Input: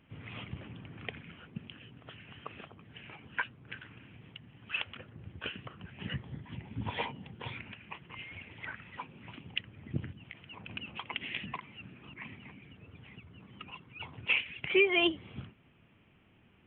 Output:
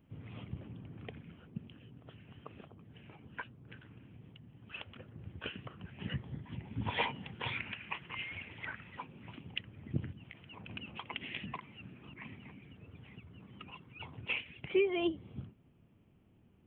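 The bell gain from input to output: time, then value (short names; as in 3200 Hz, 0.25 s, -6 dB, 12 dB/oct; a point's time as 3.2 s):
bell 2200 Hz 2.7 oct
4.81 s -12 dB
5.24 s -4 dB
6.63 s -4 dB
7.13 s +6 dB
8.07 s +6 dB
9.05 s -4.5 dB
14 s -4.5 dB
15.03 s -14.5 dB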